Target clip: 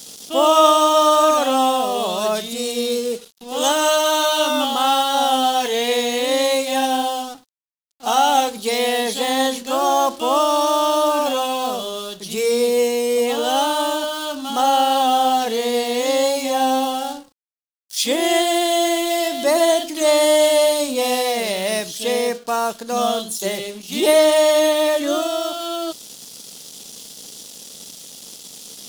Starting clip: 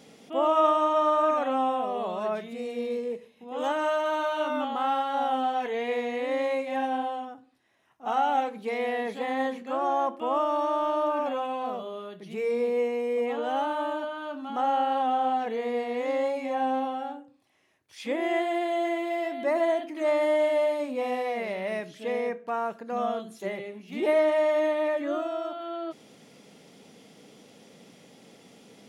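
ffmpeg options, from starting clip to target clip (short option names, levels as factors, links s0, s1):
-af "aeval=exprs='sgn(val(0))*max(abs(val(0))-0.00168,0)':c=same,aexciter=amount=7.9:drive=5.2:freq=3200,volume=2.82"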